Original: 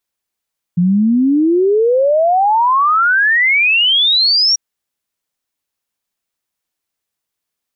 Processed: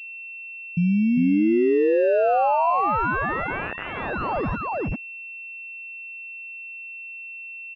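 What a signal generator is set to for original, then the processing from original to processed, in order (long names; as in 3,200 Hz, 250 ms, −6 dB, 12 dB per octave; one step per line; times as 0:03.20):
exponential sine sweep 170 Hz → 5,700 Hz 3.79 s −9 dBFS
brickwall limiter −16.5 dBFS
on a send: single-tap delay 400 ms −6 dB
on the sum: switching amplifier with a slow clock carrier 2,700 Hz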